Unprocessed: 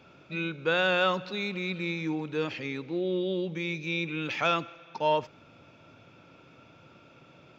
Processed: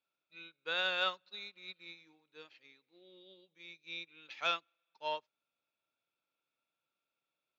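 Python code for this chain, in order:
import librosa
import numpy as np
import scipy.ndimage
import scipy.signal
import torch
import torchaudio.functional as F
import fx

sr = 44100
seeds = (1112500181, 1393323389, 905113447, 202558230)

y = fx.highpass(x, sr, hz=1100.0, slope=6)
y = fx.peak_eq(y, sr, hz=4000.0, db=8.5, octaves=0.33)
y = fx.upward_expand(y, sr, threshold_db=-44.0, expansion=2.5)
y = F.gain(torch.from_numpy(y), -4.0).numpy()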